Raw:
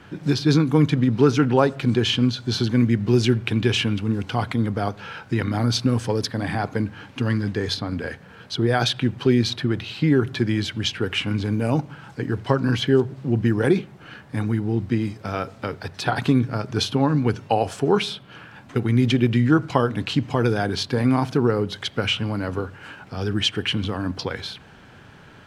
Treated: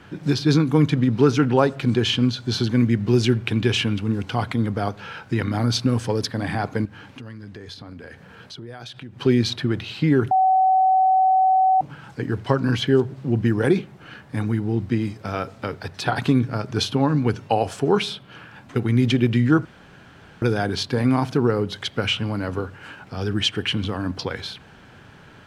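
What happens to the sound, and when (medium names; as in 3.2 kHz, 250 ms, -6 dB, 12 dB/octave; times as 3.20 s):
6.85–9.20 s: compression 4:1, threshold -37 dBFS
10.31–11.81 s: bleep 756 Hz -13.5 dBFS
19.65–20.42 s: room tone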